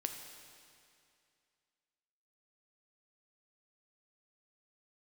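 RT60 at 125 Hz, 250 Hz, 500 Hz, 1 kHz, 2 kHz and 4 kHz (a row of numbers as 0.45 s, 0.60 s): 2.4 s, 2.4 s, 2.4 s, 2.4 s, 2.4 s, 2.3 s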